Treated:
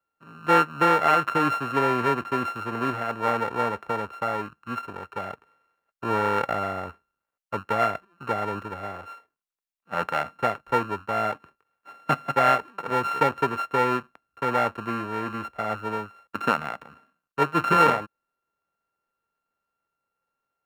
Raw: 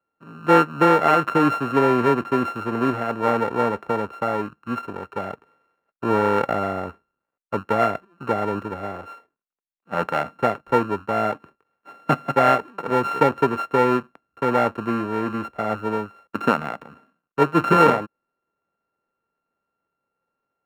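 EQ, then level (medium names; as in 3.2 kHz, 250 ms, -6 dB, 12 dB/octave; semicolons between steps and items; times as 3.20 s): peaking EQ 280 Hz -8 dB 2.8 oct; 0.0 dB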